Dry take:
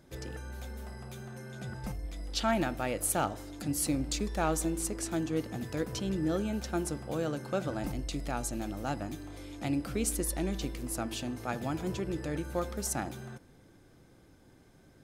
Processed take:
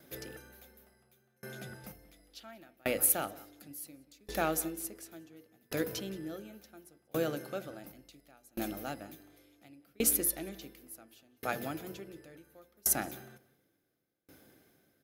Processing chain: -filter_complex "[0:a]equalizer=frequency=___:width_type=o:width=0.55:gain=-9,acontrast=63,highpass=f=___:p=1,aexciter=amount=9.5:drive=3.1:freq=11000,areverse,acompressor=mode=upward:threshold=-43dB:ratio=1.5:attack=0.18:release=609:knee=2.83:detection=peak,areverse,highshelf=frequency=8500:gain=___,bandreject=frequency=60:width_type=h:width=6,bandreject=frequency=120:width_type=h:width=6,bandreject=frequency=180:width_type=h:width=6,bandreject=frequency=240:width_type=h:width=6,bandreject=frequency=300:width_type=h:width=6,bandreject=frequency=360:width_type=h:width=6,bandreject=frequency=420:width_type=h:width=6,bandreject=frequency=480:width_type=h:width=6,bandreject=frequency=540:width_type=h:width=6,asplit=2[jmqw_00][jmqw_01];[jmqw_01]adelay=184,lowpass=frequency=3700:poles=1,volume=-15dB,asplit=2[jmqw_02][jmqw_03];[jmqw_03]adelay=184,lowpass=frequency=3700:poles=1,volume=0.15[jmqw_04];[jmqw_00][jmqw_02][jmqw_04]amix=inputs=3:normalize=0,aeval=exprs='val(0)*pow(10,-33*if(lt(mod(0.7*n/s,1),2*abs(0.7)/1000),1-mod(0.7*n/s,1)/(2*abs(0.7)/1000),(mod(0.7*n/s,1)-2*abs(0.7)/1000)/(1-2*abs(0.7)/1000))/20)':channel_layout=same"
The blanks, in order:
970, 350, -7